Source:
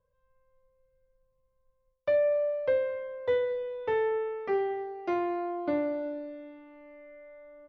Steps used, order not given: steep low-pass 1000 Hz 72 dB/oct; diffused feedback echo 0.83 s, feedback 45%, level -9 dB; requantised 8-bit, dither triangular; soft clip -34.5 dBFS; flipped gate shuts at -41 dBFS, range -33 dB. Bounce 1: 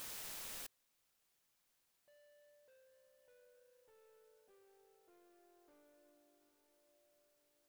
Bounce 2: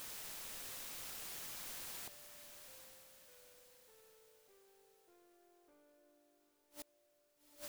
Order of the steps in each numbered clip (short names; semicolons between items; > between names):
steep low-pass > soft clip > requantised > diffused feedback echo > flipped gate; steep low-pass > requantised > soft clip > flipped gate > diffused feedback echo